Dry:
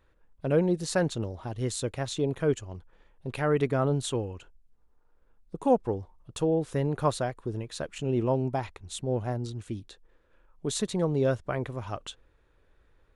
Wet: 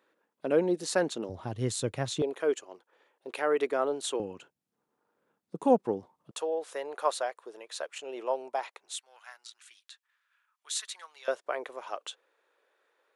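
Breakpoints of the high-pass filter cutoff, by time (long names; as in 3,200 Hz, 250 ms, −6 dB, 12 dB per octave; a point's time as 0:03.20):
high-pass filter 24 dB per octave
240 Hz
from 0:01.29 100 Hz
from 0:02.22 350 Hz
from 0:04.20 160 Hz
from 0:06.31 510 Hz
from 0:08.95 1,300 Hz
from 0:11.28 440 Hz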